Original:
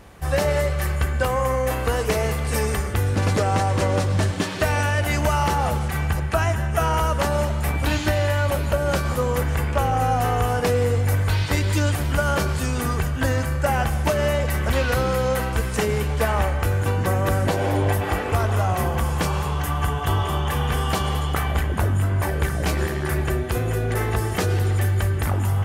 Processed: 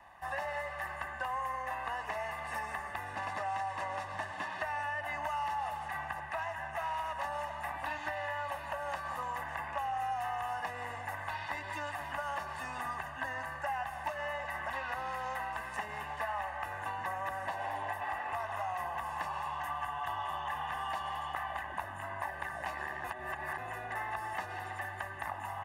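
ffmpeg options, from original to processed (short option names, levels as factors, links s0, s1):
-filter_complex "[0:a]asettb=1/sr,asplit=3[s0][s1][s2];[s0]atrim=end=1.634[s3];[s1]atrim=start=1.63:end=2.14,asetpts=PTS-STARTPTS,afade=t=in:d=0.004:c=qsin,afade=t=out:st=0.506:d=0.004:c=qsin,highshelf=f=8600:g=-6.5[s4];[s2]atrim=start=2.136[s5];[s3][s4]acrossfade=d=0.004:c1=hsin:c2=qsin[s6];[s6][s5]acrossfade=d=0.004:c1=qsin:c2=hsin,asettb=1/sr,asplit=3[s7][s8][s9];[s7]atrim=end=6.324[s10];[s8]atrim=start=6.32:end=7.24,asetpts=PTS-STARTPTS,afade=t=in:d=0.004:c=qsin,afade=t=out:st=0.916:d=0.004:c=qsin,asoftclip=type=hard:threshold=0.106[s11];[s9]atrim=start=7.236[s12];[s10][s11]acrossfade=d=0.004:c1=hsin:c2=qsin[s13];[s13][s12]acrossfade=d=0.004:c1=qsin:c2=hsin,asplit=3[s14][s15][s16];[s14]atrim=end=23.042[s17];[s15]atrim=start=23.038:end=23.582,asetpts=PTS-STARTPTS,areverse[s18];[s16]atrim=start=23.578[s19];[s17][s18]acrossfade=d=0.004:c1=hsin:c2=hsin[s20];[s20][s19]acrossfade=d=0.004:c1=hsin:c2=hsin,acrossover=split=530 2300:gain=0.0794 1 0.158[s21][s22][s23];[s21][s22][s23]amix=inputs=3:normalize=0,aecho=1:1:1.1:0.82,acrossover=split=150|680|2000[s24][s25][s26][s27];[s24]acompressor=threshold=0.00282:ratio=4[s28];[s25]acompressor=threshold=0.00891:ratio=4[s29];[s26]acompressor=threshold=0.0251:ratio=4[s30];[s27]acompressor=threshold=0.00794:ratio=4[s31];[s28][s29][s30][s31]amix=inputs=4:normalize=0,volume=0.531"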